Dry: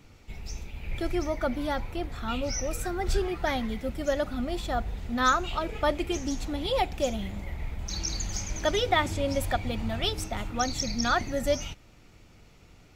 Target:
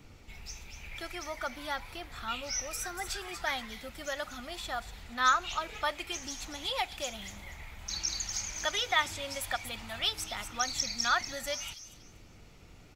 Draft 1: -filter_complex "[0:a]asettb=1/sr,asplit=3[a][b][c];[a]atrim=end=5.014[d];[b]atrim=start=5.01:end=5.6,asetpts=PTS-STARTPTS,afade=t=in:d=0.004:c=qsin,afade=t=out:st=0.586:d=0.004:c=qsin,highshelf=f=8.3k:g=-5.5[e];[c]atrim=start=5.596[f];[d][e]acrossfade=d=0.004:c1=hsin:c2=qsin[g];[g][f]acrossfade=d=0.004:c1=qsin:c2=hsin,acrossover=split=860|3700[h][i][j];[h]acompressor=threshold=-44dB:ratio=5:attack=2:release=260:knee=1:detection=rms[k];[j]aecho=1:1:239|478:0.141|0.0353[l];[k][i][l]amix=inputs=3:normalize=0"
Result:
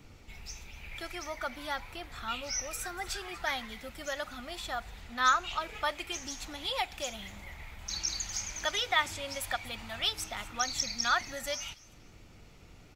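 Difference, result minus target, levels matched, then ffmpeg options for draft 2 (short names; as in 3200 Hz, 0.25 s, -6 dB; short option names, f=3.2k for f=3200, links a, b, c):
echo-to-direct -10 dB
-filter_complex "[0:a]asettb=1/sr,asplit=3[a][b][c];[a]atrim=end=5.014[d];[b]atrim=start=5.01:end=5.6,asetpts=PTS-STARTPTS,afade=t=in:d=0.004:c=qsin,afade=t=out:st=0.586:d=0.004:c=qsin,highshelf=f=8.3k:g=-5.5[e];[c]atrim=start=5.596[f];[d][e]acrossfade=d=0.004:c1=hsin:c2=qsin[g];[g][f]acrossfade=d=0.004:c1=qsin:c2=hsin,acrossover=split=860|3700[h][i][j];[h]acompressor=threshold=-44dB:ratio=5:attack=2:release=260:knee=1:detection=rms[k];[j]aecho=1:1:239|478|717:0.447|0.112|0.0279[l];[k][i][l]amix=inputs=3:normalize=0"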